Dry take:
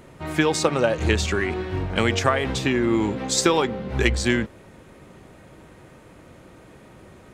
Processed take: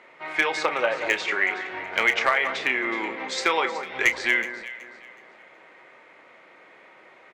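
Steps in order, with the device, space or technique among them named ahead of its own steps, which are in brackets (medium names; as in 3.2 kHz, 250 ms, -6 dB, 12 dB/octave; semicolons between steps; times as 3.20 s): 3.17–3.81 s: high-pass 110 Hz 24 dB/octave; megaphone (band-pass 650–3400 Hz; peaking EQ 2.1 kHz +10 dB 0.34 oct; hard clipper -10.5 dBFS, distortion -18 dB; doubling 31 ms -11 dB); echo whose repeats swap between lows and highs 186 ms, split 1.7 kHz, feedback 54%, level -9 dB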